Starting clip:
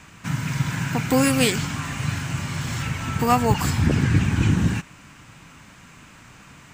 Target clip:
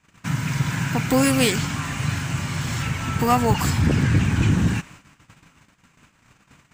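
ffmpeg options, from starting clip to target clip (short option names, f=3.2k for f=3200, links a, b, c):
-filter_complex "[0:a]asplit=2[a][b];[b]asoftclip=type=hard:threshold=-18dB,volume=-4.5dB[c];[a][c]amix=inputs=2:normalize=0,agate=range=-21dB:threshold=-40dB:ratio=16:detection=peak,volume=-2.5dB"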